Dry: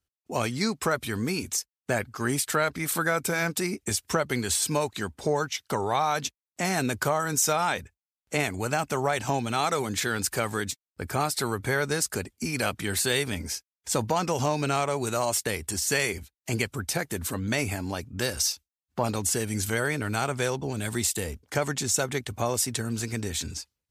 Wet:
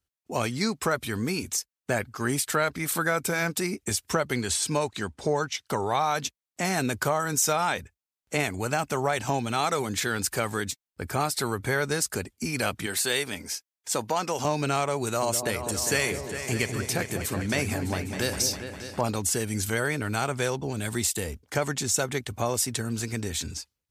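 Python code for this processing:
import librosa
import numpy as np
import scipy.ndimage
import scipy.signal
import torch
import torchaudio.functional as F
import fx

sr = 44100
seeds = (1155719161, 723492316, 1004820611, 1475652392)

y = fx.lowpass(x, sr, hz=9800.0, slope=12, at=(4.34, 5.66))
y = fx.highpass(y, sr, hz=350.0, slope=6, at=(12.86, 14.45))
y = fx.echo_opening(y, sr, ms=202, hz=750, octaves=2, feedback_pct=70, wet_db=-6, at=(15.02, 19.01))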